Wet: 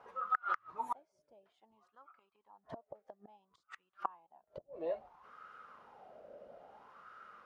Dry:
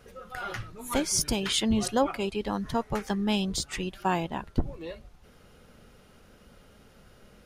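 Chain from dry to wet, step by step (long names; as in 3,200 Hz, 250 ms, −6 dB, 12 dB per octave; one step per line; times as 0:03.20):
gate with flip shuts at −23 dBFS, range −35 dB
LFO wah 0.59 Hz 590–1,300 Hz, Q 7.7
level +15 dB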